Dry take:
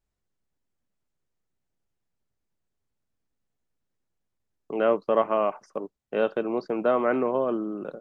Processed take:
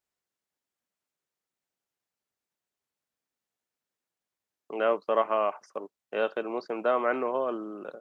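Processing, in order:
high-pass filter 730 Hz 6 dB per octave
level +1 dB

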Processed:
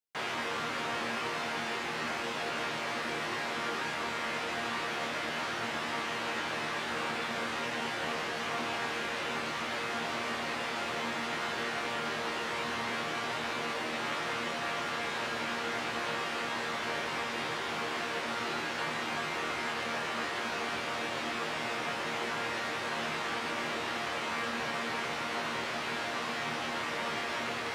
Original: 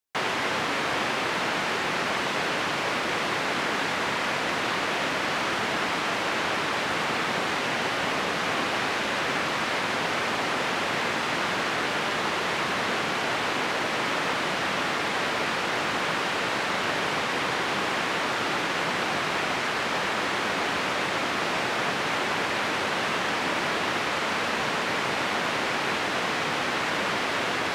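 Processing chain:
resonators tuned to a chord D#2 fifth, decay 0.27 s
level +2 dB

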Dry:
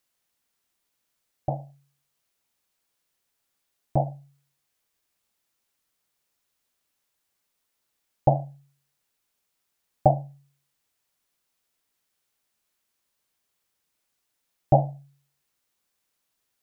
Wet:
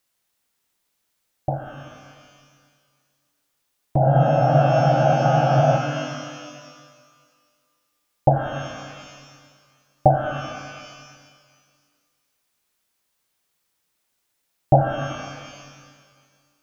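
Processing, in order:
frozen spectrum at 0:03.99, 1.77 s
reverb with rising layers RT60 1.8 s, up +12 semitones, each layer −8 dB, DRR 5 dB
level +3 dB

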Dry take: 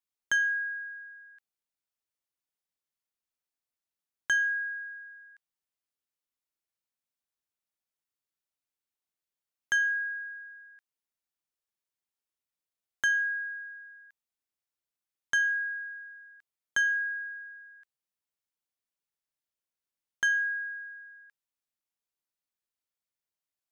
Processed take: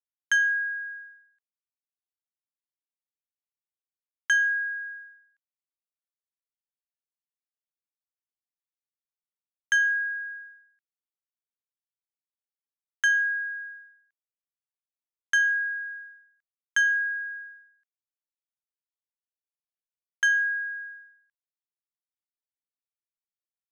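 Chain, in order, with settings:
downward expander −42 dBFS
parametric band 94 Hz +10.5 dB 0.36 octaves
level +4 dB

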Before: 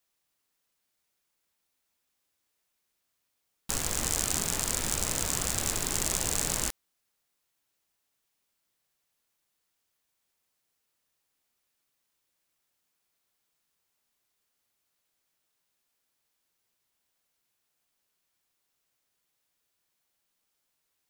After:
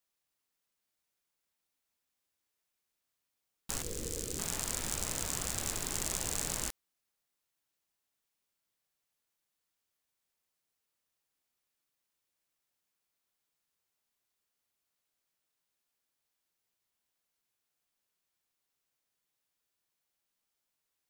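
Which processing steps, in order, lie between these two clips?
0:03.82–0:04.39: drawn EQ curve 260 Hz 0 dB, 480 Hz +8 dB, 710 Hz −15 dB, 4,300 Hz −5 dB
level −6 dB

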